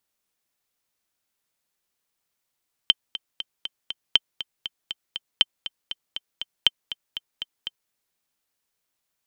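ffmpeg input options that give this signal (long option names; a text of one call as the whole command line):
ffmpeg -f lavfi -i "aevalsrc='pow(10,(-2-14.5*gte(mod(t,5*60/239),60/239))/20)*sin(2*PI*3110*mod(t,60/239))*exp(-6.91*mod(t,60/239)/0.03)':duration=5.02:sample_rate=44100" out.wav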